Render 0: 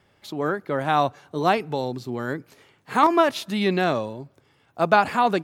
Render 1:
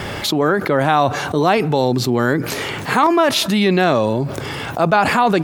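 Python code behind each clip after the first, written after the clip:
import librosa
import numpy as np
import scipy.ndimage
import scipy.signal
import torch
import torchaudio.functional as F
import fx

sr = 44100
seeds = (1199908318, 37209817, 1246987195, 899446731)

y = fx.env_flatten(x, sr, amount_pct=70)
y = y * 10.0 ** (1.5 / 20.0)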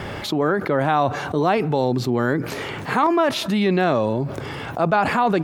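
y = fx.high_shelf(x, sr, hz=3400.0, db=-8.5)
y = y * 10.0 ** (-3.5 / 20.0)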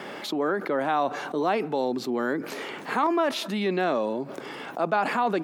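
y = scipy.signal.sosfilt(scipy.signal.butter(4, 210.0, 'highpass', fs=sr, output='sos'), x)
y = y * 10.0 ** (-5.5 / 20.0)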